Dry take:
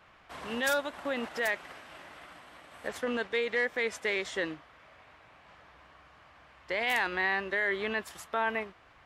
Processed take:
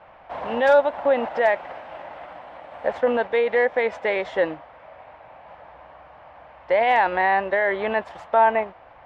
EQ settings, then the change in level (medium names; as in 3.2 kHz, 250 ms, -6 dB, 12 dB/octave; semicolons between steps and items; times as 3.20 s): low-pass 2.5 kHz 12 dB/octave; high-order bell 690 Hz +10.5 dB 1.1 oct; +6.0 dB